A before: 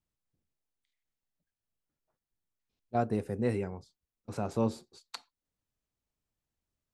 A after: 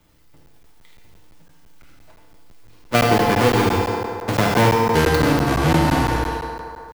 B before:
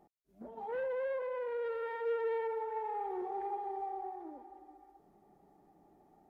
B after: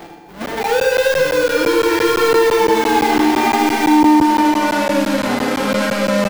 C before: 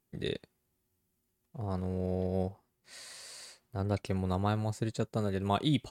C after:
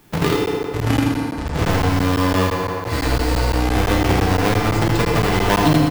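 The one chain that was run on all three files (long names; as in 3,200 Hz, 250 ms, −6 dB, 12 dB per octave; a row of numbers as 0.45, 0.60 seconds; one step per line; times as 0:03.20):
each half-wave held at its own peak
tuned comb filter 170 Hz, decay 0.46 s, harmonics all, mix 70%
delay with pitch and tempo change per echo 537 ms, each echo −7 semitones, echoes 2
parametric band 10,000 Hz −6.5 dB 2 octaves
feedback delay network reverb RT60 1.8 s, low-frequency decay 0.7×, high-frequency decay 0.55×, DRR 0.5 dB
downward compressor 2 to 1, threshold −37 dBFS
low-shelf EQ 390 Hz −5 dB
on a send: single-tap delay 79 ms −6.5 dB
on the sum: regular buffer underruns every 0.17 s, samples 512, zero, from 0:00.46
multiband upward and downward compressor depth 40%
normalise the peak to −2 dBFS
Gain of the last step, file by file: +23.5, +25.5, +23.5 decibels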